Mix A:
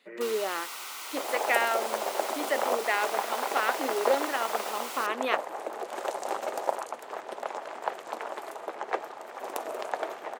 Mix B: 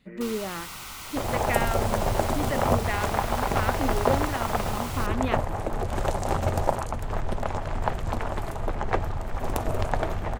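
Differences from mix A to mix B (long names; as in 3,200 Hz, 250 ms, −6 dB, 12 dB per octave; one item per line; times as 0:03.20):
speech −3.5 dB
second sound +3.5 dB
master: remove high-pass filter 370 Hz 24 dB per octave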